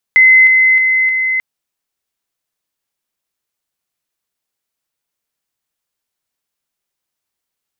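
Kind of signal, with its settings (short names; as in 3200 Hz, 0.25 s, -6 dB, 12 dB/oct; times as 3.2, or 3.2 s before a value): level ladder 2050 Hz -3.5 dBFS, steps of -3 dB, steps 4, 0.31 s 0.00 s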